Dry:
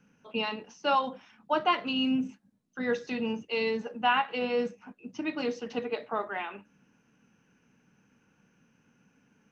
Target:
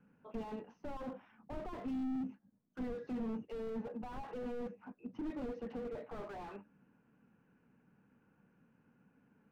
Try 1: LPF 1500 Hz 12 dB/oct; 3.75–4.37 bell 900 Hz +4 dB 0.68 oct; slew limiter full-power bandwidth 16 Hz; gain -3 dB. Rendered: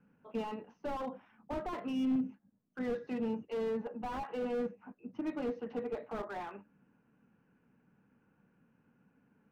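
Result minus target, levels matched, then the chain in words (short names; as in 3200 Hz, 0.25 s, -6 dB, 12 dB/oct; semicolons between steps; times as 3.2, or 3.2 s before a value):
slew limiter: distortion -7 dB
LPF 1500 Hz 12 dB/oct; 3.75–4.37 bell 900 Hz +4 dB 0.68 oct; slew limiter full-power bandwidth 6 Hz; gain -3 dB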